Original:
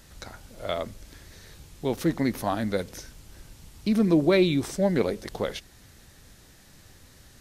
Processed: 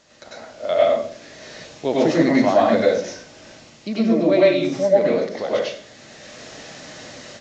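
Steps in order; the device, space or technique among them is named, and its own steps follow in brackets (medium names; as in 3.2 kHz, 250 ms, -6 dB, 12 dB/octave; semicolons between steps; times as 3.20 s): filmed off a television (band-pass 210–7400 Hz; peaking EQ 610 Hz +9.5 dB 0.34 oct; reverberation RT60 0.50 s, pre-delay 90 ms, DRR -6.5 dB; white noise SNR 34 dB; level rider gain up to 14 dB; trim -3.5 dB; AAC 48 kbps 16 kHz)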